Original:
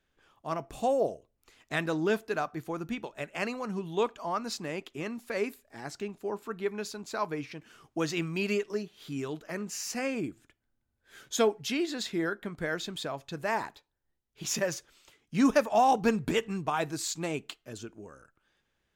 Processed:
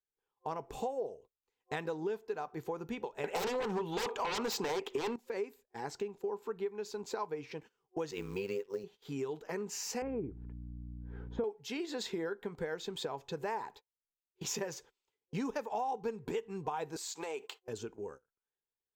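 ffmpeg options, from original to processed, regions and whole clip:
-filter_complex "[0:a]asettb=1/sr,asplit=3[a][b][c];[a]atrim=end=3.244[d];[b]atrim=start=3.24:end=5.16,asetpts=PTS-STARTPTS,afade=t=in:d=0.004:c=qsin,afade=t=out:st=1.916:d=0.004:c=qsin,bass=f=250:g=-9,treble=f=4k:g=-3,aeval=exprs='0.141*sin(PI/2*8.91*val(0)/0.141)':c=same[e];[c]atrim=start=5.156[f];[d][e]acrossfade=d=0.004:c1=hsin:c2=qsin[g];[g][f]acrossfade=d=0.004:c1=qsin:c2=hsin,asettb=1/sr,asplit=3[h][i][j];[h]atrim=end=8.114[k];[i]atrim=start=8.11:end=8.84,asetpts=PTS-STARTPTS,afade=t=in:d=0.004:c=qsin,afade=t=out:st=0.726:d=0.004:c=qsin,equalizer=f=750:t=o:w=0.24:g=-7,acrusher=bits=5:mode=log:mix=0:aa=0.000001,tremolo=f=97:d=0.824[l];[j]atrim=start=8.836[m];[k][l]acrossfade=d=0.004:c1=hsin:c2=qsin[n];[n][m]acrossfade=d=0.004:c1=qsin:c2=hsin,asettb=1/sr,asplit=3[o][p][q];[o]atrim=end=10.024[r];[p]atrim=start=10.02:end=11.44,asetpts=PTS-STARTPTS,afade=t=in:d=0.004:c=qsin,afade=t=out:st=1.416:d=0.004:c=qsin,lowpass=1.3k,aemphasis=mode=reproduction:type=bsi,aeval=exprs='val(0)+0.00891*(sin(2*PI*60*n/s)+sin(2*PI*2*60*n/s)/2+sin(2*PI*3*60*n/s)/3+sin(2*PI*4*60*n/s)/4+sin(2*PI*5*60*n/s)/5)':c=same[s];[q]atrim=start=11.436[t];[r][s]acrossfade=d=0.004:c1=hsin:c2=qsin[u];[u][t]acrossfade=d=0.004:c1=qsin:c2=hsin,asettb=1/sr,asplit=3[v][w][x];[v]atrim=end=16.964[y];[w]atrim=start=16.96:end=17.63,asetpts=PTS-STARTPTS,afade=t=in:d=0.004:c=qsin,afade=t=out:st=0.666:d=0.004:c=qsin,highpass=530,acompressor=threshold=-48dB:ratio=4:attack=3.2:release=140:knee=1:detection=peak,aeval=exprs='0.0447*sin(PI/2*2*val(0)/0.0447)':c=same[z];[x]atrim=start=17.626[aa];[y][z]acrossfade=d=0.004:c1=hsin:c2=qsin[ab];[ab][aa]acrossfade=d=0.004:c1=qsin:c2=hsin,agate=range=-26dB:threshold=-49dB:ratio=16:detection=peak,superequalizer=7b=3.16:9b=2.51:16b=0.447,acompressor=threshold=-32dB:ratio=6,volume=-2.5dB"

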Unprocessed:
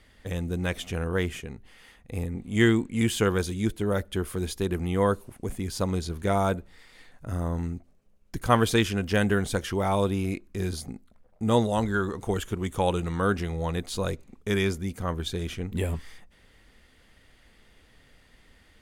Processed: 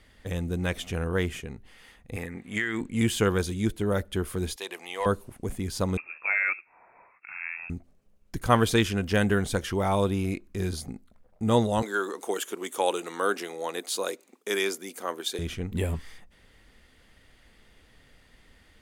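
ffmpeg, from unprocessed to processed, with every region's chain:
-filter_complex "[0:a]asettb=1/sr,asplit=3[a][b][c];[a]atrim=end=2.164[d];[b]atrim=start=2.16:end=2.81,asetpts=PTS-STARTPTS,afade=t=in:d=0.004:c=qsin,afade=t=out:st=0.646:d=0.004:c=qsin,highpass=f=300:p=1,equalizer=f=1.8k:w=1.6:g=13.5,acompressor=threshold=-23dB:ratio=16:attack=3.2:release=140:knee=1:detection=peak[e];[c]atrim=start=2.806[f];[d][e]acrossfade=d=0.004:c1=hsin:c2=qsin[g];[g][f]acrossfade=d=0.004:c1=qsin:c2=hsin,asettb=1/sr,asplit=3[h][i][j];[h]atrim=end=4.564[k];[i]atrim=start=4.56:end=5.06,asetpts=PTS-STARTPTS,afade=t=in:d=0.004:c=qsin,afade=t=out:st=0.496:d=0.004:c=qsin,highpass=840,asplit=2[l][m];[m]highpass=f=720:p=1,volume=13dB,asoftclip=type=tanh:threshold=-14.5dB[n];[l][n]amix=inputs=2:normalize=0,lowpass=f=4k:p=1,volume=-6dB,equalizer=f=1.4k:t=o:w=0.61:g=-12.5[o];[j]atrim=start=5.056[p];[k][o]acrossfade=d=0.004:c1=hsin:c2=qsin[q];[q][p]acrossfade=d=0.004:c1=qsin:c2=hsin,asettb=1/sr,asplit=3[r][s][t];[r]atrim=end=5.974[u];[s]atrim=start=5.97:end=7.7,asetpts=PTS-STARTPTS,afade=t=in:d=0.004:c=qsin,afade=t=out:st=1.726:d=0.004:c=qsin,highpass=350,lowpass=f=2.4k:t=q:w=0.5098,lowpass=f=2.4k:t=q:w=0.6013,lowpass=f=2.4k:t=q:w=0.9,lowpass=f=2.4k:t=q:w=2.563,afreqshift=-2800[v];[t]atrim=start=7.696[w];[u][v]acrossfade=d=0.004:c1=hsin:c2=qsin[x];[x][w]acrossfade=d=0.004:c1=qsin:c2=hsin,asettb=1/sr,asplit=3[y][z][aa];[y]atrim=end=11.824[ab];[z]atrim=start=11.82:end=15.39,asetpts=PTS-STARTPTS,afade=t=in:d=0.004:c=qsin,afade=t=out:st=3.566:d=0.004:c=qsin,highpass=f=310:w=0.5412,highpass=f=310:w=1.3066,highshelf=f=5.1k:g=8.5[ac];[aa]atrim=start=15.386[ad];[ab][ac]acrossfade=d=0.004:c1=hsin:c2=qsin[ae];[ae][ad]acrossfade=d=0.004:c1=qsin:c2=hsin"

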